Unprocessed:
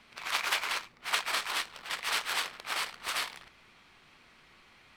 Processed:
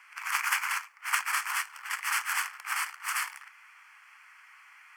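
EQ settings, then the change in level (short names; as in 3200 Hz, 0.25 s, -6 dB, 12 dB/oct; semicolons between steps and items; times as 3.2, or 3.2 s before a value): dynamic EQ 2000 Hz, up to -4 dB, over -45 dBFS, Q 0.73; elliptic high-pass 700 Hz, stop band 80 dB; fixed phaser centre 1600 Hz, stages 4; +8.5 dB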